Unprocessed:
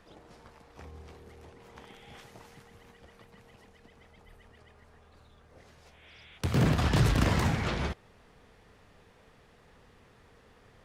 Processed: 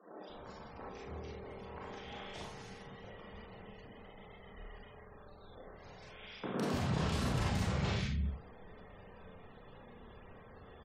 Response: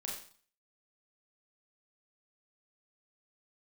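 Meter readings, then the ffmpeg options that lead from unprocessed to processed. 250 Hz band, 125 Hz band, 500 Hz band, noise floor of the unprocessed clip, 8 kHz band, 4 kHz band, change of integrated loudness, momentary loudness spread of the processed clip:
-6.0 dB, -7.5 dB, -4.0 dB, -60 dBFS, -6.0 dB, -5.0 dB, -11.5 dB, 21 LU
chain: -filter_complex "[0:a]equalizer=f=180:t=o:w=0.31:g=4,acrossover=split=210|1800[a][b][c];[c]adelay=160[d];[a]adelay=290[e];[e][b][d]amix=inputs=3:normalize=0[f];[1:a]atrim=start_sample=2205,afade=t=out:st=0.34:d=0.01,atrim=end_sample=15435[g];[f][g]afir=irnorm=-1:irlink=0,areverse,acompressor=threshold=-39dB:ratio=4,areverse,afftfilt=real='re*gte(hypot(re,im),0.000794)':imag='im*gte(hypot(re,im),0.000794)':win_size=1024:overlap=0.75,volume=6dB"

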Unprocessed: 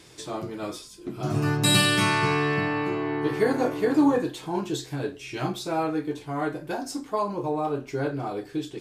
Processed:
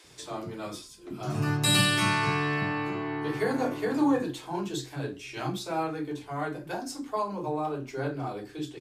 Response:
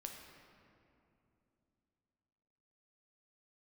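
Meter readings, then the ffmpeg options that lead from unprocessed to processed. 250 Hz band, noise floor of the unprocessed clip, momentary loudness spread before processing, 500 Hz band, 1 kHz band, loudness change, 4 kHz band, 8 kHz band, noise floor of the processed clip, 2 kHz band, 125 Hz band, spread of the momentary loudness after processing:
-4.0 dB, -47 dBFS, 13 LU, -5.5 dB, -3.0 dB, -3.5 dB, -2.5 dB, -2.5 dB, -49 dBFS, -2.5 dB, -2.5 dB, 14 LU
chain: -filter_complex "[0:a]acrossover=split=380[a][b];[a]adelay=40[c];[c][b]amix=inputs=2:normalize=0,volume=-2.5dB"

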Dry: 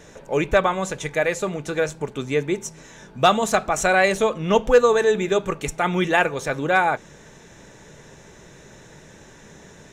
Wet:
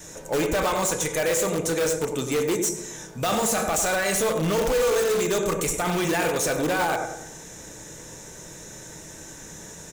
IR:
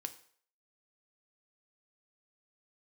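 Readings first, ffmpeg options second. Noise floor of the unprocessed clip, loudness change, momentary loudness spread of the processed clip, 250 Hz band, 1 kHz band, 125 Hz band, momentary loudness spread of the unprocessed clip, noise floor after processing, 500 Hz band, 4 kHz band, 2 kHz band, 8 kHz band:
-47 dBFS, -3.0 dB, 18 LU, -1.5 dB, -5.5 dB, -1.5 dB, 10 LU, -42 dBFS, -3.5 dB, -0.5 dB, -5.5 dB, +7.5 dB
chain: -filter_complex "[1:a]atrim=start_sample=2205[a];[0:a][a]afir=irnorm=-1:irlink=0,adynamicequalizer=threshold=0.0282:dfrequency=470:dqfactor=6.4:tfrequency=470:tqfactor=6.4:attack=5:release=100:ratio=0.375:range=2:mode=boostabove:tftype=bell,acrossover=split=4500[b][c];[c]crystalizer=i=4:c=0[d];[b][d]amix=inputs=2:normalize=0,alimiter=limit=-16.5dB:level=0:latency=1:release=12,asplit=2[e][f];[f]adelay=97,lowpass=f=1.3k:p=1,volume=-6dB,asplit=2[g][h];[h]adelay=97,lowpass=f=1.3k:p=1,volume=0.47,asplit=2[i][j];[j]adelay=97,lowpass=f=1.3k:p=1,volume=0.47,asplit=2[k][l];[l]adelay=97,lowpass=f=1.3k:p=1,volume=0.47,asplit=2[m][n];[n]adelay=97,lowpass=f=1.3k:p=1,volume=0.47,asplit=2[o][p];[p]adelay=97,lowpass=f=1.3k:p=1,volume=0.47[q];[e][g][i][k][m][o][q]amix=inputs=7:normalize=0,asplit=2[r][s];[s]aeval=exprs='(mod(10.6*val(0)+1,2)-1)/10.6':c=same,volume=-7dB[t];[r][t]amix=inputs=2:normalize=0"

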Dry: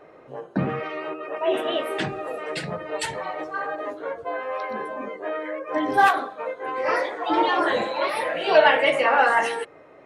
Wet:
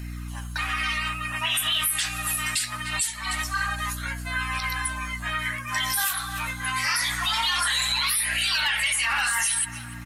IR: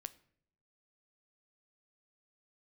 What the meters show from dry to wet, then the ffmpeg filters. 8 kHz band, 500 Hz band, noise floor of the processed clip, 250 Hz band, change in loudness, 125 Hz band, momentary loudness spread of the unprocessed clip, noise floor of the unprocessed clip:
+18.5 dB, -26.0 dB, -36 dBFS, -10.0 dB, -0.5 dB, +3.0 dB, 13 LU, -49 dBFS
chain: -filter_complex "[0:a]crystalizer=i=10:c=0,highpass=f=1k:w=0.5412,highpass=f=1k:w=1.3066,aemphasis=mode=production:type=riaa,asplit=2[a][b];[b]adelay=295,lowpass=f=2.3k:p=1,volume=-21dB,asplit=2[c][d];[d]adelay=295,lowpass=f=2.3k:p=1,volume=0.5,asplit=2[e][f];[f]adelay=295,lowpass=f=2.3k:p=1,volume=0.5,asplit=2[g][h];[h]adelay=295,lowpass=f=2.3k:p=1,volume=0.5[i];[c][e][g][i]amix=inputs=4:normalize=0[j];[a][j]amix=inputs=2:normalize=0,aeval=exprs='val(0)+0.0251*(sin(2*PI*60*n/s)+sin(2*PI*2*60*n/s)/2+sin(2*PI*3*60*n/s)/3+sin(2*PI*4*60*n/s)/4+sin(2*PI*5*60*n/s)/5)':c=same,acompressor=threshold=-12dB:ratio=8,flanger=delay=0.4:depth=9.8:regen=-42:speed=0.24:shape=sinusoidal,acontrast=81,alimiter=limit=-11dB:level=0:latency=1:release=42,aresample=32000,aresample=44100,volume=-5.5dB"

